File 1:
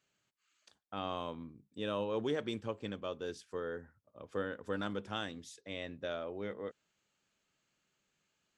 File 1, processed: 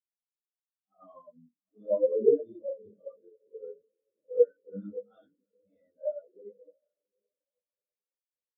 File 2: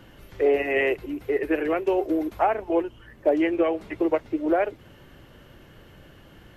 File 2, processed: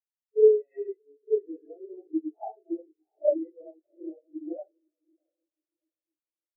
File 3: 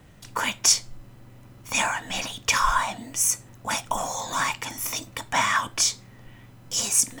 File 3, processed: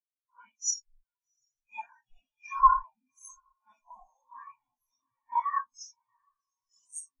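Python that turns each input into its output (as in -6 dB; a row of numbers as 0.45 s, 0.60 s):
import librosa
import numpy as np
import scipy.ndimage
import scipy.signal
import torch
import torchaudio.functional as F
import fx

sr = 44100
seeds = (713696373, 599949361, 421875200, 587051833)

y = fx.phase_scramble(x, sr, seeds[0], window_ms=200)
y = fx.echo_diffused(y, sr, ms=715, feedback_pct=65, wet_db=-9.0)
y = fx.spectral_expand(y, sr, expansion=4.0)
y = y * 10.0 ** (-9 / 20.0) / np.max(np.abs(y))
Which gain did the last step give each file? +12.0 dB, -1.5 dB, -1.5 dB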